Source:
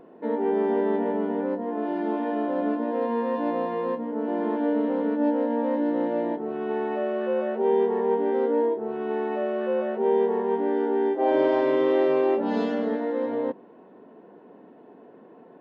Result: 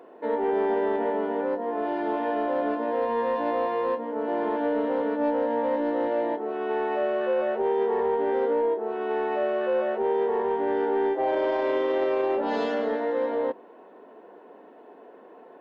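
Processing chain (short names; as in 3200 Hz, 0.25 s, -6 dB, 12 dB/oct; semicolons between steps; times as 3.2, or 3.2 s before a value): HPF 430 Hz 12 dB/oct; limiter -20 dBFS, peak gain reduction 7 dB; in parallel at -4 dB: soft clip -25.5 dBFS, distortion -16 dB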